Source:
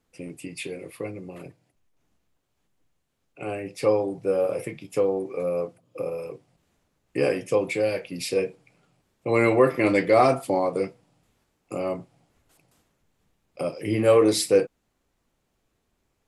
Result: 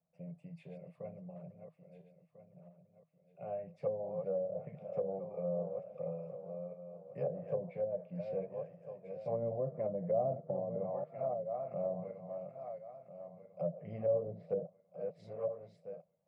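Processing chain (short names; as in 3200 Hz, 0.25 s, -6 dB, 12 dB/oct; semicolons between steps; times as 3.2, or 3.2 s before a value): regenerating reverse delay 0.673 s, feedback 50%, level -8 dB; double band-pass 320 Hz, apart 1.9 oct; treble ducked by the level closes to 420 Hz, closed at -28 dBFS; gain -1 dB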